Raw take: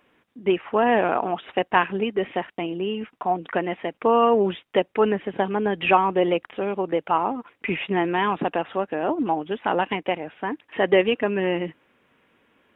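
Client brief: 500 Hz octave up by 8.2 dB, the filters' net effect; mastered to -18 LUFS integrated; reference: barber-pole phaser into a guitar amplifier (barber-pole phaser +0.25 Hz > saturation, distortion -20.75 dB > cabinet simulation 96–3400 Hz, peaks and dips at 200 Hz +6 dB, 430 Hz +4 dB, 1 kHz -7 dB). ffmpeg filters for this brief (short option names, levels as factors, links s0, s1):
-filter_complex "[0:a]equalizer=f=500:t=o:g=7.5,asplit=2[s0][s1];[s1]afreqshift=0.25[s2];[s0][s2]amix=inputs=2:normalize=1,asoftclip=threshold=0.422,highpass=96,equalizer=f=200:t=q:w=4:g=6,equalizer=f=430:t=q:w=4:g=4,equalizer=f=1000:t=q:w=4:g=-7,lowpass=f=3400:w=0.5412,lowpass=f=3400:w=1.3066,volume=1.5"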